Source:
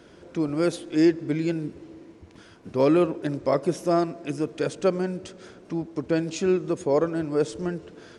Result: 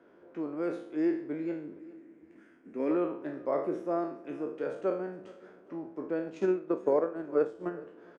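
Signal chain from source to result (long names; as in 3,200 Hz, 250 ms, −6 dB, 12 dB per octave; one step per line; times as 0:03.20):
peak hold with a decay on every bin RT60 0.53 s
0:01.79–0:02.91: octave-band graphic EQ 125/250/500/1,000/2,000/4,000/8,000 Hz −10/+8/−5/−10/+8/−9/+10 dB
0:06.26–0:07.70: transient designer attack +11 dB, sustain −8 dB
three-way crossover with the lows and the highs turned down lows −19 dB, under 220 Hz, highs −22 dB, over 2,000 Hz
repeating echo 413 ms, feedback 45%, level −22 dB
level −8.5 dB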